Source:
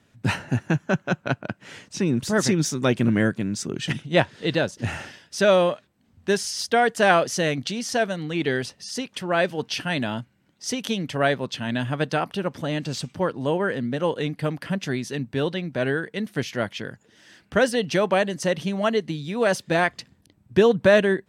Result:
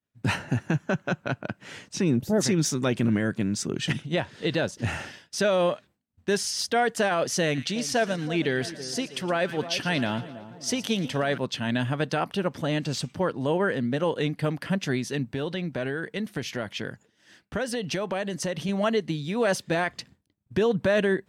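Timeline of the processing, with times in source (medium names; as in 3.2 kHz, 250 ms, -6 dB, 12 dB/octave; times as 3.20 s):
2.17–2.41 s: time-frequency box 880–11000 Hz -13 dB
7.43–11.38 s: two-band feedback delay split 1.2 kHz, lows 324 ms, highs 115 ms, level -15 dB
15.24–18.69 s: compression, threshold -25 dBFS
whole clip: expander -46 dBFS; peak limiter -15 dBFS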